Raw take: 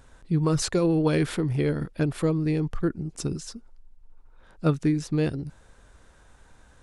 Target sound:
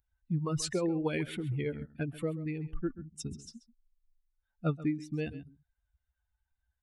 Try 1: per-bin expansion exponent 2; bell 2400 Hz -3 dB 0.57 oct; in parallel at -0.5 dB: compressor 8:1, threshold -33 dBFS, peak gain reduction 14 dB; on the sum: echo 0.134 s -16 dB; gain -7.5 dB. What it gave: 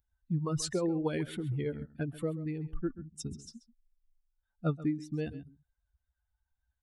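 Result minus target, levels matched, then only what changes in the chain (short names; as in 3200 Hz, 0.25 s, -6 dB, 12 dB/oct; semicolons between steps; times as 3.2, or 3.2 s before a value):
2000 Hz band -3.5 dB
change: bell 2400 Hz +5 dB 0.57 oct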